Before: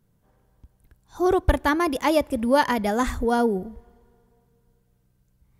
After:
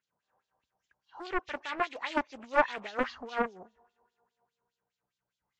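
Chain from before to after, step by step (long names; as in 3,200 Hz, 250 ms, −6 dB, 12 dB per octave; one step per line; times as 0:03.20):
hearing-aid frequency compression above 1,800 Hz 1.5 to 1
LFO wah 4.9 Hz 760–3,900 Hz, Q 3
highs frequency-modulated by the lows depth 0.68 ms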